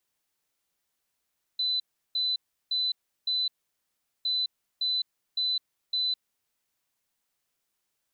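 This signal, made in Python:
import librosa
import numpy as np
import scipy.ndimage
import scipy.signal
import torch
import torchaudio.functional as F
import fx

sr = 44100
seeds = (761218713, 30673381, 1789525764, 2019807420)

y = fx.beep_pattern(sr, wave='sine', hz=4010.0, on_s=0.21, off_s=0.35, beeps=4, pause_s=0.77, groups=2, level_db=-24.5)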